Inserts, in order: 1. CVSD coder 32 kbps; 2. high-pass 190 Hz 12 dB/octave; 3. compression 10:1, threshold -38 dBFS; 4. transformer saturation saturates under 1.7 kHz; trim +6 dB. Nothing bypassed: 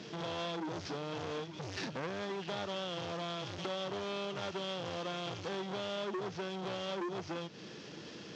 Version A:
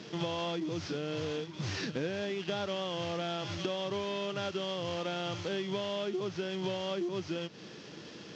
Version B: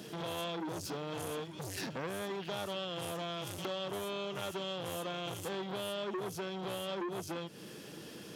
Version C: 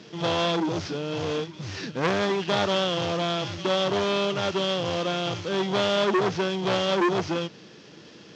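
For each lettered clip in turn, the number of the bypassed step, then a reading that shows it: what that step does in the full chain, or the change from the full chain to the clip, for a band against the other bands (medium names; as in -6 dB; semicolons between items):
4, crest factor change -1.5 dB; 1, 8 kHz band +6.0 dB; 3, crest factor change +3.5 dB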